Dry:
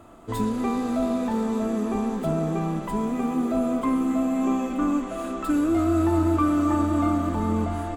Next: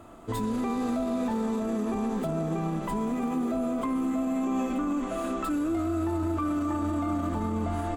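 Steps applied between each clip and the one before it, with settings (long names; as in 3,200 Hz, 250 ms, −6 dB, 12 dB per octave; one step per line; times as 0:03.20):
brickwall limiter −21.5 dBFS, peak gain reduction 10 dB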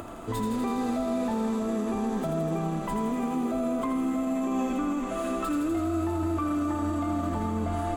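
upward compression, threshold −32 dBFS
feedback echo with a high-pass in the loop 82 ms, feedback 77%, high-pass 920 Hz, level −6 dB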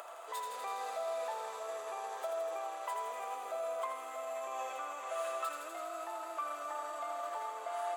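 Butterworth high-pass 540 Hz 36 dB per octave
level −4.5 dB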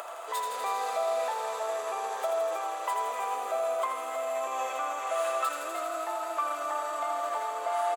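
single-tap delay 313 ms −9.5 dB
level +8 dB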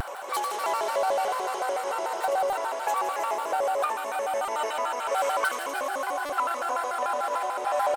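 buffer that repeats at 0:02.49/0:04.45/0:06.26, samples 128, times 10
pitch modulation by a square or saw wave square 6.8 Hz, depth 250 cents
level +3.5 dB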